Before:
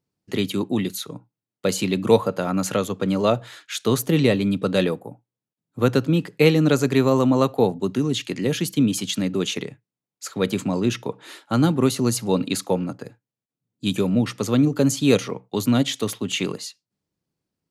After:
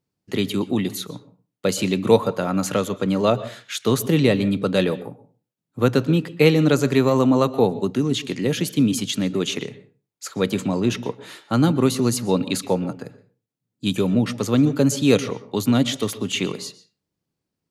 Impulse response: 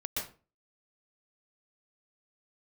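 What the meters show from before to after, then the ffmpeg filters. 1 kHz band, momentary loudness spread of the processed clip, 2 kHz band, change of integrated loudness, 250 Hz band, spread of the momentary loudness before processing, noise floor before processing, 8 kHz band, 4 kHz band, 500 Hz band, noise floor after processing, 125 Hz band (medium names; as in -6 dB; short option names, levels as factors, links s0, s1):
+1.0 dB, 13 LU, +1.0 dB, +1.0 dB, +1.0 dB, 12 LU, under -85 dBFS, 0.0 dB, +0.5 dB, +1.0 dB, -82 dBFS, +1.0 dB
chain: -filter_complex "[0:a]asplit=2[s0][s1];[1:a]atrim=start_sample=2205,lowpass=7300[s2];[s1][s2]afir=irnorm=-1:irlink=0,volume=0.133[s3];[s0][s3]amix=inputs=2:normalize=0"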